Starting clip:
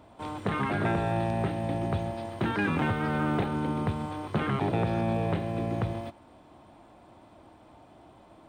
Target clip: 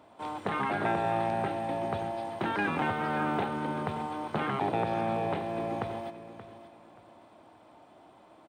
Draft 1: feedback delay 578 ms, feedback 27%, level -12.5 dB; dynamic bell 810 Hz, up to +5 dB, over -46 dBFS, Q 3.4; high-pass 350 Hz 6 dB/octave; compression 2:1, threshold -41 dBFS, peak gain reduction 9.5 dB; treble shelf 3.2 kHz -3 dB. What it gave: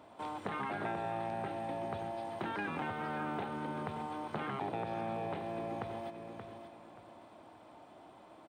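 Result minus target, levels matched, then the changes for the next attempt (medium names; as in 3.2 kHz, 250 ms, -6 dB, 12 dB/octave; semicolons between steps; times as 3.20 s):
compression: peak gain reduction +9.5 dB
remove: compression 2:1, threshold -41 dBFS, peak gain reduction 9.5 dB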